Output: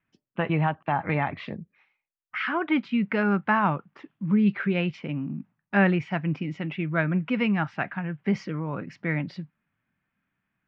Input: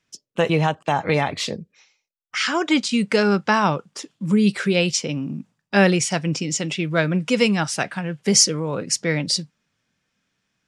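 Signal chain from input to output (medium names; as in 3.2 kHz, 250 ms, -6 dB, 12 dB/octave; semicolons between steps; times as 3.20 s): low-pass 2.3 kHz 24 dB/octave; peaking EQ 480 Hz -9.5 dB 0.6 oct; trim -3 dB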